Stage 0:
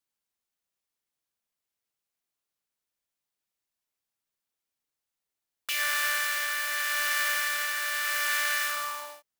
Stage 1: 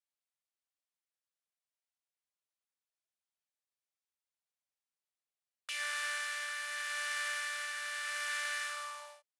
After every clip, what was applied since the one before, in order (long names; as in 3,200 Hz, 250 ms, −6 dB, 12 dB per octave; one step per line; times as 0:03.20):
elliptic band-pass filter 530–9,800 Hz, stop band 40 dB
level −8.5 dB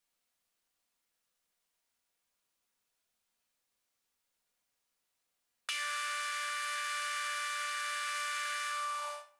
convolution reverb RT60 0.45 s, pre-delay 4 ms, DRR 2 dB
in parallel at +1 dB: brickwall limiter −35 dBFS, peak gain reduction 10 dB
on the sum: downward compressor 6 to 1, threshold −37 dBFS, peak gain reduction 8 dB
level +3 dB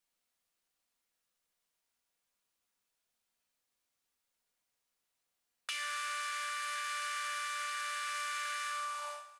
repeating echo 137 ms, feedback 53%, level −15.5 dB
level −2 dB